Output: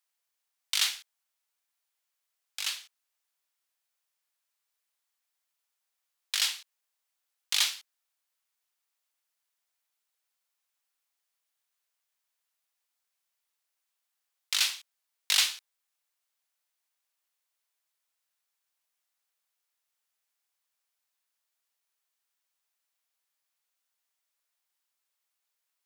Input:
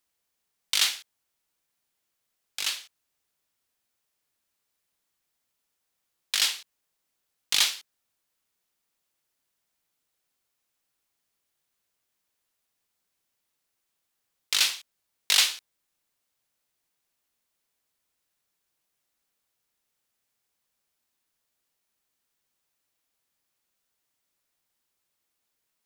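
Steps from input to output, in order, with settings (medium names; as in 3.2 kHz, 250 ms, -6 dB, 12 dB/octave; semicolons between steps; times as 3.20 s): high-pass 700 Hz 12 dB/octave; trim -3.5 dB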